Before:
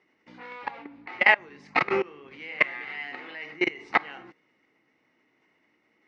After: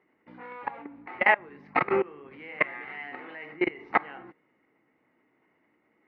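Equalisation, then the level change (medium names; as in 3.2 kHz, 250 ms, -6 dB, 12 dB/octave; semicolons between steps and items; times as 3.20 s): low-pass 1.7 kHz 12 dB/octave; +1.0 dB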